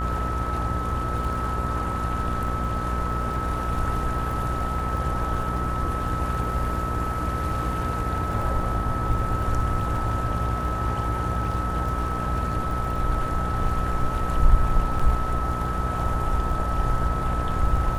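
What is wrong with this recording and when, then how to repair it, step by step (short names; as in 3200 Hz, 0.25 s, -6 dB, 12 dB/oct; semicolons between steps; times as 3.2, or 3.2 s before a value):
buzz 60 Hz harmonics 32 -29 dBFS
crackle 39/s -33 dBFS
tone 1300 Hz -29 dBFS
14.99 gap 4.9 ms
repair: de-click; notch 1300 Hz, Q 30; de-hum 60 Hz, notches 32; interpolate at 14.99, 4.9 ms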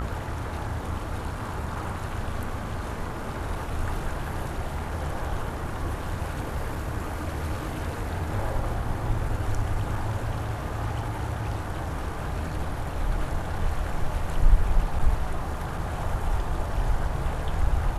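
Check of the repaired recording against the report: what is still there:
none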